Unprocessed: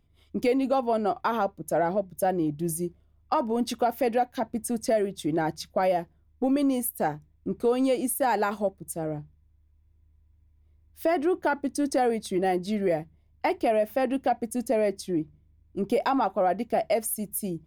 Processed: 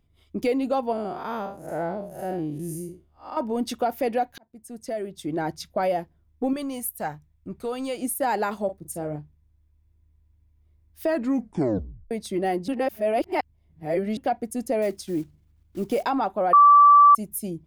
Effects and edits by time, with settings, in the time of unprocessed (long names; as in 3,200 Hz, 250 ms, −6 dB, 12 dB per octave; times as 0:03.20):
0:00.92–0:03.37: spectrum smeared in time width 158 ms
0:04.38–0:05.55: fade in
0:06.53–0:08.02: parametric band 350 Hz −9 dB 1.6 octaves
0:08.65–0:09.16: double-tracking delay 40 ms −9.5 dB
0:11.06: tape stop 1.05 s
0:12.68–0:14.17: reverse
0:14.82–0:16.03: one scale factor per block 5 bits
0:16.53–0:17.15: beep over 1,160 Hz −9.5 dBFS